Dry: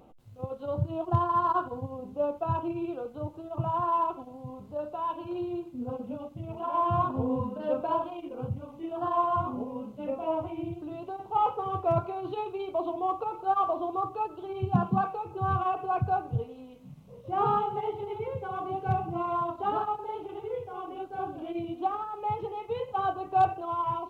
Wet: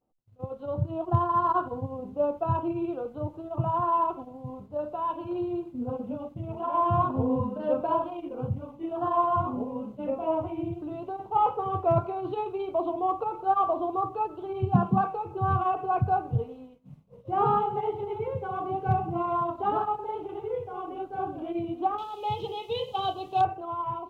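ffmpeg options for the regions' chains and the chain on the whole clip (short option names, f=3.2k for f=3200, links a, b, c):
-filter_complex "[0:a]asettb=1/sr,asplit=3[a][b][c];[a]atrim=end=21.984[d];[b]atrim=start=21.98:end=23.41,asetpts=PTS-STARTPTS,afade=t=in:d=0.004:c=qsin,afade=t=out:st=1.426:d=0.004:c=qsin,highshelf=f=2.4k:t=q:w=3:g=12.5,bandreject=f=50:t=h:w=6,bandreject=f=100:t=h:w=6,bandreject=f=150:t=h:w=6,bandreject=f=200:t=h:w=6,bandreject=f=250:t=h:w=6,bandreject=f=300:t=h:w=6,bandreject=f=350:t=h:w=6,bandreject=f=400:t=h:w=6,bandreject=f=450:t=h:w=6[e];[c]atrim=start=23.406[f];[d][e]acrossfade=d=0.004:c1=hsin:c2=qsin[g];[g][f]acrossfade=d=0.004:c1=qsin:c2=hsin,agate=range=-33dB:threshold=-42dB:ratio=3:detection=peak,highshelf=f=2.4k:g=-8,dynaudnorm=f=170:g=13:m=3dB"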